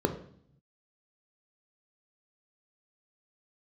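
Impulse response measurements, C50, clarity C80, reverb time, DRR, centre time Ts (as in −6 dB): 11.0 dB, 13.5 dB, 0.60 s, 4.5 dB, 19 ms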